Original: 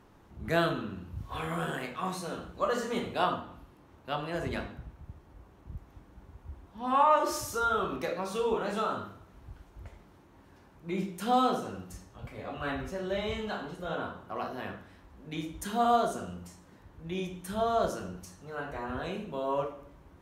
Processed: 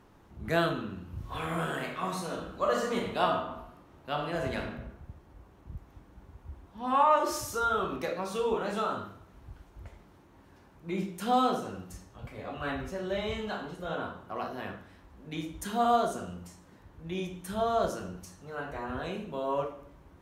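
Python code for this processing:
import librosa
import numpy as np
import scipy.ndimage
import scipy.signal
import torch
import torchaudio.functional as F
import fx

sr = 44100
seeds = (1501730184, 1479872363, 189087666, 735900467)

y = fx.reverb_throw(x, sr, start_s=1.04, length_s=3.69, rt60_s=0.88, drr_db=4.0)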